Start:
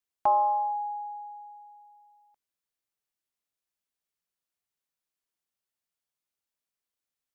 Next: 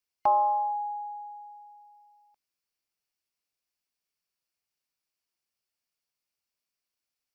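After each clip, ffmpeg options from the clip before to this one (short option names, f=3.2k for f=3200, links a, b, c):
-af "superequalizer=12b=1.58:14b=2"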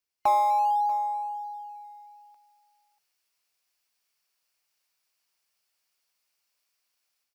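-filter_complex "[0:a]acrossover=split=520[a][b];[a]acrusher=samples=10:mix=1:aa=0.000001:lfo=1:lforange=10:lforate=0.64[c];[b]dynaudnorm=f=450:g=3:m=10dB[d];[c][d]amix=inputs=2:normalize=0,aecho=1:1:639:0.133"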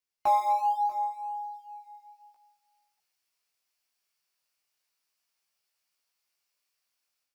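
-af "flanger=delay=16:depth=6.8:speed=0.36"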